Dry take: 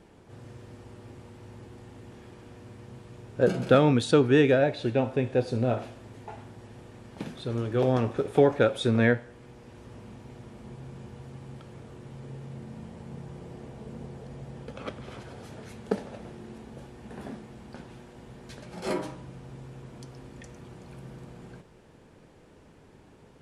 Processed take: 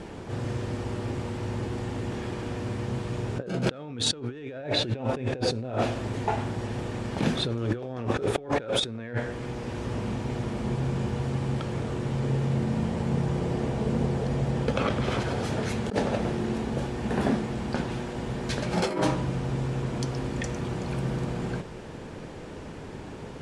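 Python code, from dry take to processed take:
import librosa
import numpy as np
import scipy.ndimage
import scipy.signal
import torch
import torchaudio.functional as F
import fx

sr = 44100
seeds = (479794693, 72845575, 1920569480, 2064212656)

p1 = np.clip(10.0 ** (16.5 / 20.0) * x, -1.0, 1.0) / 10.0 ** (16.5 / 20.0)
p2 = x + F.gain(torch.from_numpy(p1), -8.5).numpy()
p3 = fx.over_compress(p2, sr, threshold_db=-34.0, ratio=-1.0)
p4 = scipy.signal.sosfilt(scipy.signal.butter(2, 8700.0, 'lowpass', fs=sr, output='sos'), p3)
y = F.gain(torch.from_numpy(p4), 5.5).numpy()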